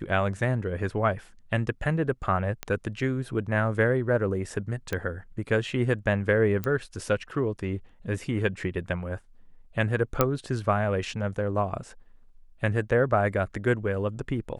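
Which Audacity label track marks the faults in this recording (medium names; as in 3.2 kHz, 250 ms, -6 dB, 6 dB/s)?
2.630000	2.630000	pop -15 dBFS
4.930000	4.930000	pop -15 dBFS
6.640000	6.640000	pop -16 dBFS
10.210000	10.210000	pop -6 dBFS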